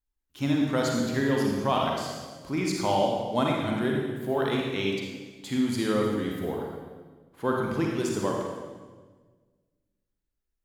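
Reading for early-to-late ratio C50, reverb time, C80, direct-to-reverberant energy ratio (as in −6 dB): 0.0 dB, 1.4 s, 2.0 dB, −1.5 dB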